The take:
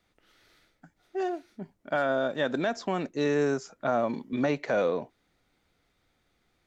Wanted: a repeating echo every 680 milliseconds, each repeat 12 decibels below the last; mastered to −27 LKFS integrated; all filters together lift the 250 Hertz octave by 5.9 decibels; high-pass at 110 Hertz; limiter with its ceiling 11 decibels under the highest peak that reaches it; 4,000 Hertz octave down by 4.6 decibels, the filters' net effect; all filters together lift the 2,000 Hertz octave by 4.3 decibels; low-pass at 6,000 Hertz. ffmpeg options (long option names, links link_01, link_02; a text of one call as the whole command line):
ffmpeg -i in.wav -af "highpass=110,lowpass=6000,equalizer=frequency=250:width_type=o:gain=7,equalizer=frequency=2000:width_type=o:gain=7.5,equalizer=frequency=4000:width_type=o:gain=-7.5,alimiter=limit=-22.5dB:level=0:latency=1,aecho=1:1:680|1360|2040:0.251|0.0628|0.0157,volume=5.5dB" out.wav